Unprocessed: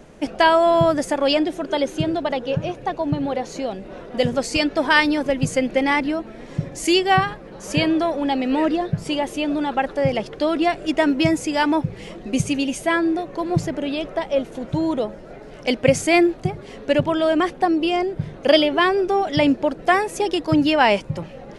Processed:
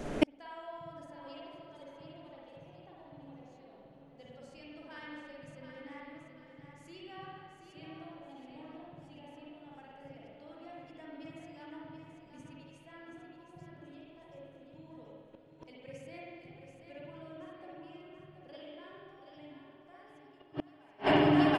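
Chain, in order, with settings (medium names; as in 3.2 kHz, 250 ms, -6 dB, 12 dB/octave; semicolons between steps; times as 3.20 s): fade out at the end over 4.36 s; on a send: feedback delay 730 ms, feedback 35%, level -8 dB; on the sum: spring tank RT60 1.8 s, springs 47/54 ms, chirp 25 ms, DRR -5.5 dB; inverted gate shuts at -14 dBFS, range -40 dB; trim +3 dB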